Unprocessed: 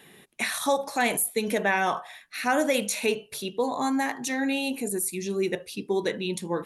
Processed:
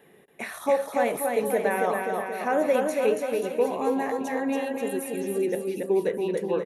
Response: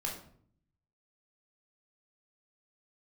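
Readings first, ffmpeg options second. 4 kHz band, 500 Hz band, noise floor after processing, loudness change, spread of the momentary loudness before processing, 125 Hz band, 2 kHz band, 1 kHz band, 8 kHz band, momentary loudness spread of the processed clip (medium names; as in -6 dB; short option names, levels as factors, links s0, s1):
-11.0 dB, +4.5 dB, -55 dBFS, +1.0 dB, 7 LU, no reading, -4.5 dB, 0.0 dB, -9.0 dB, 6 LU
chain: -af "equalizer=f=500:t=o:w=1:g=9,equalizer=f=4000:t=o:w=1:g=-9,equalizer=f=8000:t=o:w=1:g=-7,aecho=1:1:280|532|758.8|962.9|1147:0.631|0.398|0.251|0.158|0.1,volume=0.562"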